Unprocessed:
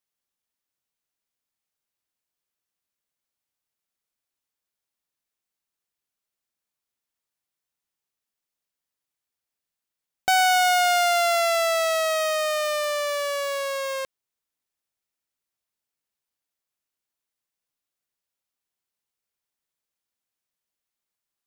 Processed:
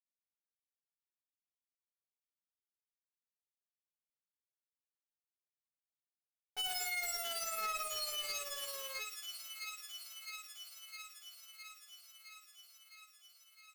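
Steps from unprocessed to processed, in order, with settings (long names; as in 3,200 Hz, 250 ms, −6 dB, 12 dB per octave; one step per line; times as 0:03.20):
stylus tracing distortion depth 0.1 ms
high-pass filter 110 Hz 6 dB per octave
low-shelf EQ 240 Hz +3 dB
bit reduction 5 bits
tuned comb filter 430 Hz, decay 0.41 s, mix 100%
on a send: delay with a high-pass on its return 1,036 ms, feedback 73%, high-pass 2,300 Hz, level −11.5 dB
on the sum: tube saturation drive 48 dB, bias 0.3
time stretch by overlap-add 0.64×, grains 110 ms
level +13.5 dB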